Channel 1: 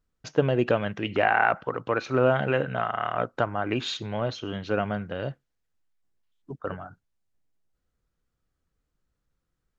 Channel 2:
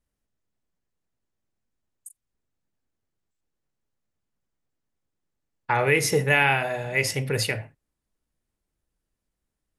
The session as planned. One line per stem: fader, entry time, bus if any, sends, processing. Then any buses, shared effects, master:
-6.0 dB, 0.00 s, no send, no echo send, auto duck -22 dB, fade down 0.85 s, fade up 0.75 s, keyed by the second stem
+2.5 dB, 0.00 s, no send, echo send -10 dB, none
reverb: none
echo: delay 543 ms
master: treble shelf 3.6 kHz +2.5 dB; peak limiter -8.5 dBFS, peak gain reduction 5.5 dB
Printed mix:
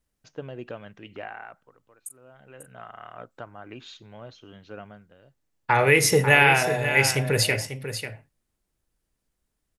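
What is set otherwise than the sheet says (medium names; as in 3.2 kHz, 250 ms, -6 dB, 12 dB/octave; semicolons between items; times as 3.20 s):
stem 1 -6.0 dB -> -14.5 dB; master: missing peak limiter -8.5 dBFS, peak gain reduction 5.5 dB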